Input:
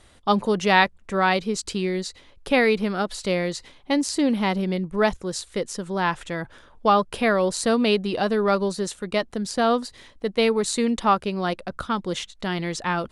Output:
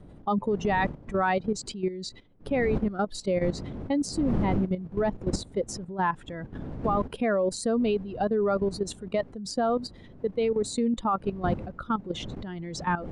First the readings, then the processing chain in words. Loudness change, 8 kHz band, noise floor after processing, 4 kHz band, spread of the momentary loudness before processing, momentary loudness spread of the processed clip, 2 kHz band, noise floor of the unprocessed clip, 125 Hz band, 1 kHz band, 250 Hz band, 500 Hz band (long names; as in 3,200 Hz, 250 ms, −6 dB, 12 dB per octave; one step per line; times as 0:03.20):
−5.0 dB, −7.0 dB, −49 dBFS, −10.5 dB, 10 LU, 9 LU, −9.5 dB, −53 dBFS, −1.0 dB, −6.0 dB, −4.0 dB, −4.0 dB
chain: expanding power law on the bin magnitudes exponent 1.7
wind on the microphone 240 Hz −32 dBFS
output level in coarse steps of 12 dB